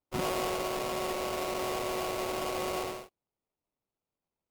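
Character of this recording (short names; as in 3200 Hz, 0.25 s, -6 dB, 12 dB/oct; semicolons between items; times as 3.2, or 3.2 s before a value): aliases and images of a low sample rate 1700 Hz, jitter 20%; MP3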